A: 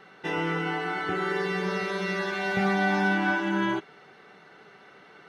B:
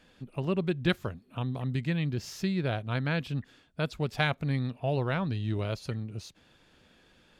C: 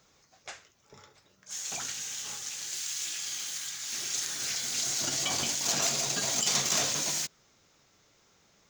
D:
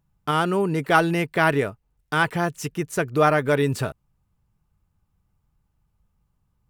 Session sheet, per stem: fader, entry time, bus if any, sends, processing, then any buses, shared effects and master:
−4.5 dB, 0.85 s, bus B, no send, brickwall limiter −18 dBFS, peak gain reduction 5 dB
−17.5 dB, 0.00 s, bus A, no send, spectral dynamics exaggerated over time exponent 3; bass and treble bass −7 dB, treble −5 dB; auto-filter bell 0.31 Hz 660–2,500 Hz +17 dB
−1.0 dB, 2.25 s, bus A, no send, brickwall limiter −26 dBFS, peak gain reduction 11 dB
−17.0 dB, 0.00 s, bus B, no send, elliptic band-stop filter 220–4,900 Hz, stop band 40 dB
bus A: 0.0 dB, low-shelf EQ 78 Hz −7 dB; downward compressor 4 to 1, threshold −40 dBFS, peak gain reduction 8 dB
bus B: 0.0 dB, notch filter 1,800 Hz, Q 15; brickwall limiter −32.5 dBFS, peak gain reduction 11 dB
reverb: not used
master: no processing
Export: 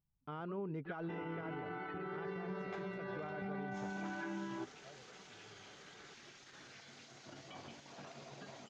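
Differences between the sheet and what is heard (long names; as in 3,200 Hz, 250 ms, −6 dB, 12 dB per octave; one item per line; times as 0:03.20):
stem D: missing elliptic band-stop filter 220–4,900 Hz, stop band 40 dB
master: extra head-to-tape spacing loss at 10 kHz 36 dB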